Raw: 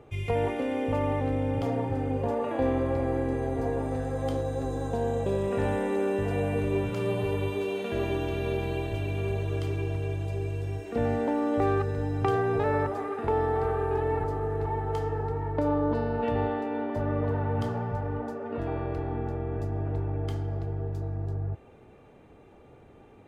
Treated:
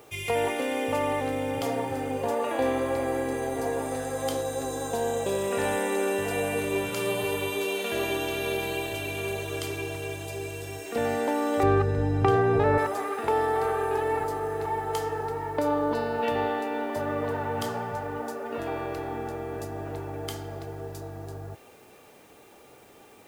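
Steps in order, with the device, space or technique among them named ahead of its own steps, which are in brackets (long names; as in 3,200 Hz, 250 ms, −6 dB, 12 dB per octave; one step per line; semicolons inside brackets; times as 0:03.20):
turntable without a phono preamp (RIAA equalisation recording; white noise bed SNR 33 dB)
0:11.63–0:12.78: RIAA equalisation playback
level +4 dB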